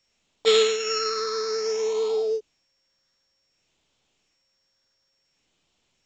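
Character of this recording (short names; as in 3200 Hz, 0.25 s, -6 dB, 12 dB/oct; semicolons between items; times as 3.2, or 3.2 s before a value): a buzz of ramps at a fixed pitch in blocks of 8 samples; phasing stages 6, 0.57 Hz, lowest notch 800–1600 Hz; A-law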